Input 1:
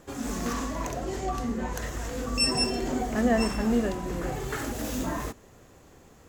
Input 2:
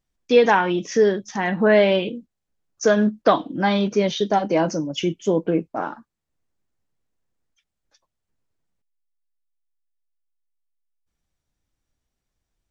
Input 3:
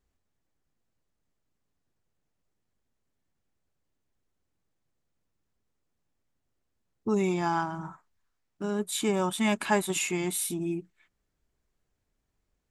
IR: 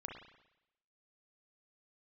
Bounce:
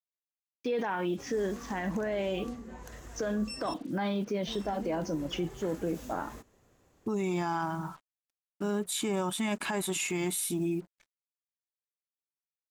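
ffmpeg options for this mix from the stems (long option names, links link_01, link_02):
-filter_complex "[0:a]acompressor=threshold=-29dB:ratio=2,adelay=1100,volume=-12.5dB,asplit=3[link_01][link_02][link_03];[link_01]atrim=end=3.74,asetpts=PTS-STARTPTS,afade=type=out:start_time=3.736:duration=0.004:curve=hsin[link_04];[link_02]atrim=start=3.74:end=4.47,asetpts=PTS-STARTPTS,volume=0[link_05];[link_03]atrim=start=4.47,asetpts=PTS-STARTPTS,afade=type=in:duration=0.004:curve=hsin[link_06];[link_04][link_05][link_06]concat=n=3:v=0:a=1[link_07];[1:a]highshelf=frequency=3600:gain=-7,adelay=350,volume=-6.5dB[link_08];[2:a]volume=1.5dB[link_09];[link_08][link_09]amix=inputs=2:normalize=0,acrusher=bits=8:mix=0:aa=0.5,alimiter=limit=-21.5dB:level=0:latency=1:release=12,volume=0dB[link_10];[link_07][link_10]amix=inputs=2:normalize=0,alimiter=limit=-23.5dB:level=0:latency=1:release=74"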